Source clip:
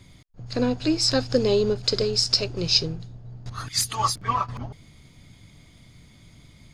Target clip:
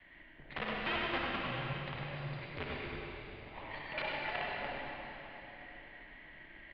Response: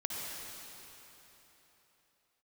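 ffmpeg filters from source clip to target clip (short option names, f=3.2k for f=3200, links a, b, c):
-filter_complex "[0:a]adynamicequalizer=threshold=0.0178:dfrequency=150:dqfactor=1.3:tfrequency=150:tqfactor=1.3:attack=5:release=100:ratio=0.375:range=1.5:mode=cutabove:tftype=bell,acompressor=threshold=-33dB:ratio=10,asplit=3[a][b][c];[a]bandpass=f=300:t=q:w=8,volume=0dB[d];[b]bandpass=f=870:t=q:w=8,volume=-6dB[e];[c]bandpass=f=2.24k:t=q:w=8,volume=-9dB[f];[d][e][f]amix=inputs=3:normalize=0,aresample=11025,aeval=exprs='(mod(141*val(0)+1,2)-1)/141':c=same,aresample=44100,crystalizer=i=5.5:c=0,aeval=exprs='max(val(0),0)':c=same,asplit=2[g][h];[h]adelay=99.13,volume=-7dB,highshelf=f=4k:g=-2.23[i];[g][i]amix=inputs=2:normalize=0[j];[1:a]atrim=start_sample=2205[k];[j][k]afir=irnorm=-1:irlink=0,highpass=f=360:t=q:w=0.5412,highpass=f=360:t=q:w=1.307,lowpass=f=3.2k:t=q:w=0.5176,lowpass=f=3.2k:t=q:w=0.7071,lowpass=f=3.2k:t=q:w=1.932,afreqshift=-280,volume=14dB"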